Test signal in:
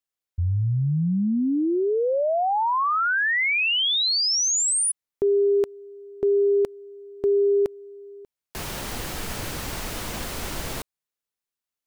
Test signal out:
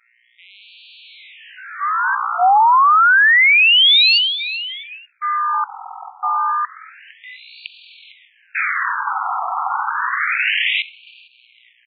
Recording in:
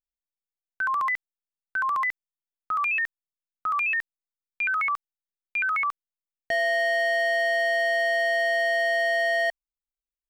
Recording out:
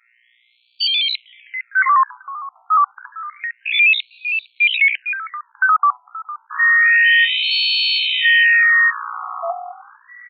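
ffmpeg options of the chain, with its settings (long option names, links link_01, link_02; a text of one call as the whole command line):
ffmpeg -i in.wav -filter_complex "[0:a]highshelf=frequency=3600:width_type=q:width=3:gain=-9,bandreject=frequency=165.8:width_type=h:width=4,bandreject=frequency=331.6:width_type=h:width=4,bandreject=frequency=497.4:width_type=h:width=4,bandreject=frequency=663.2:width_type=h:width=4,bandreject=frequency=829:width_type=h:width=4,bandreject=frequency=994.8:width_type=h:width=4,asplit=4[link_01][link_02][link_03][link_04];[link_02]adelay=456,afreqshift=42,volume=-19dB[link_05];[link_03]adelay=912,afreqshift=84,volume=-28.6dB[link_06];[link_04]adelay=1368,afreqshift=126,volume=-38.3dB[link_07];[link_01][link_05][link_06][link_07]amix=inputs=4:normalize=0,apsyclip=24dB,aeval=exprs='val(0)+0.178*(sin(2*PI*60*n/s)+sin(2*PI*2*60*n/s)/2+sin(2*PI*3*60*n/s)/3+sin(2*PI*4*60*n/s)/4+sin(2*PI*5*60*n/s)/5)':channel_layout=same,asplit=2[link_08][link_09];[link_09]aeval=exprs='val(0)*gte(abs(val(0)),0.15)':channel_layout=same,volume=-5dB[link_10];[link_08][link_10]amix=inputs=2:normalize=0,acontrast=80,agate=range=-19dB:threshold=-1dB:ratio=3:release=326:detection=rms,afftfilt=real='re*between(b*sr/1024,970*pow(3300/970,0.5+0.5*sin(2*PI*0.29*pts/sr))/1.41,970*pow(3300/970,0.5+0.5*sin(2*PI*0.29*pts/sr))*1.41)':imag='im*between(b*sr/1024,970*pow(3300/970,0.5+0.5*sin(2*PI*0.29*pts/sr))/1.41,970*pow(3300/970,0.5+0.5*sin(2*PI*0.29*pts/sr))*1.41)':win_size=1024:overlap=0.75,volume=-6dB" out.wav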